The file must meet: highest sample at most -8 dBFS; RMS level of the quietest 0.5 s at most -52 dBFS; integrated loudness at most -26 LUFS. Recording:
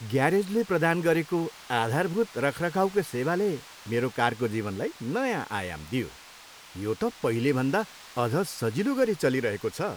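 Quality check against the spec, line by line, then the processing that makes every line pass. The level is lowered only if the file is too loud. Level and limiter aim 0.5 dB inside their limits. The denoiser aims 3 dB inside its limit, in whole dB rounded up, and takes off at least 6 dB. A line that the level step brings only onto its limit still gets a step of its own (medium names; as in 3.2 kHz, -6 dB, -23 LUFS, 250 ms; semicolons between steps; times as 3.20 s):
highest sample -9.0 dBFS: pass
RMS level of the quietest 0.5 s -49 dBFS: fail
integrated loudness -27.5 LUFS: pass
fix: noise reduction 6 dB, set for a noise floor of -49 dBFS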